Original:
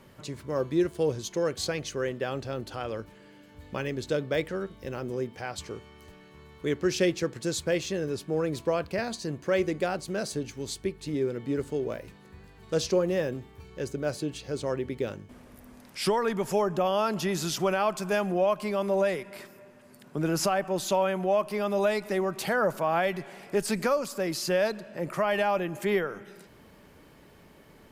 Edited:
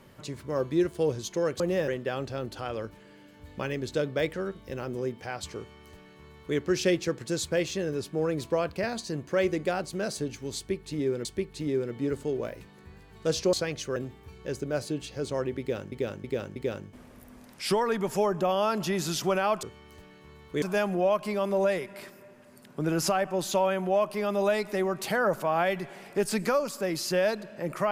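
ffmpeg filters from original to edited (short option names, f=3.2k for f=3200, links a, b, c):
-filter_complex "[0:a]asplit=11[a][b][c][d][e][f][g][h][i][j][k];[a]atrim=end=1.602[l];[b]atrim=start=12.998:end=13.282[m];[c]atrim=start=2.028:end=11.402[n];[d]atrim=start=10.718:end=13.002[o];[e]atrim=start=1.598:end=2.032[p];[f]atrim=start=13.278:end=15.242[q];[g]atrim=start=14.918:end=15.242[r];[h]atrim=start=14.918:end=15.242[s];[i]atrim=start=14.918:end=17.992[t];[j]atrim=start=5.728:end=6.722[u];[k]atrim=start=17.988[v];[l][m]acrossfade=d=0.004:c1=hsin:c2=hsin[w];[w][n]acrossfade=d=0.004:c1=hsin:c2=hsin[x];[x][o]acrossfade=d=0.004:c1=hsin:c2=hsin[y];[y][p]acrossfade=d=0.004:c1=hsin:c2=hsin[z];[z][q]acrossfade=d=0.004:c1=hsin:c2=hsin[aa];[aa][r]acrossfade=d=0.004:c1=hsin:c2=hsin[ab];[ab][s]acrossfade=d=0.004:c1=hsin:c2=hsin[ac];[ac][t]acrossfade=d=0.004:c1=hsin:c2=hsin[ad];[ad][u]acrossfade=d=0.004:c1=hsin:c2=hsin[ae];[ae][v]acrossfade=d=0.004:c1=hsin:c2=hsin"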